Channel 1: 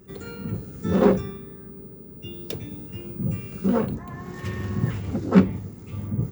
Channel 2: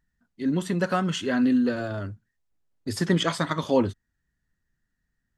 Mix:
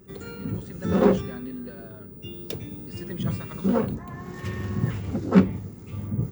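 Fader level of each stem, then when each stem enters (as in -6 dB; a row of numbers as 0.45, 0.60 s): -1.0, -15.5 dB; 0.00, 0.00 s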